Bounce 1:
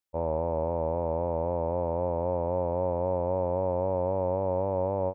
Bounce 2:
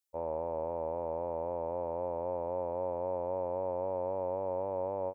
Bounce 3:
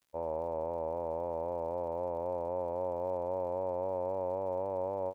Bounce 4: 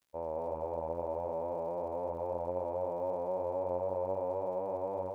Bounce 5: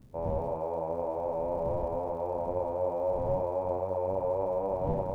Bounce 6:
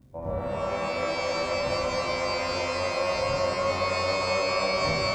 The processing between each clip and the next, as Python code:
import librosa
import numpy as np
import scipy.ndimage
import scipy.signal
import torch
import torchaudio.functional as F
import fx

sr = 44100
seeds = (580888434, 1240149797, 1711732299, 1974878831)

y1 = fx.bass_treble(x, sr, bass_db=-10, treble_db=9)
y1 = F.gain(torch.from_numpy(y1), -5.5).numpy()
y2 = fx.dmg_crackle(y1, sr, seeds[0], per_s=150.0, level_db=-56.0)
y3 = y2 + 10.0 ** (-4.0 / 20.0) * np.pad(y2, (int(218 * sr / 1000.0), 0))[:len(y2)]
y3 = F.gain(torch.from_numpy(y3), -2.0).numpy()
y4 = fx.dmg_wind(y3, sr, seeds[1], corner_hz=150.0, level_db=-46.0)
y4 = fx.doubler(y4, sr, ms=31.0, db=-5.5)
y4 = F.gain(torch.from_numpy(y4), 3.0).numpy()
y5 = fx.notch_comb(y4, sr, f0_hz=430.0)
y5 = fx.rev_shimmer(y5, sr, seeds[2], rt60_s=3.1, semitones=12, shimmer_db=-2, drr_db=1.5)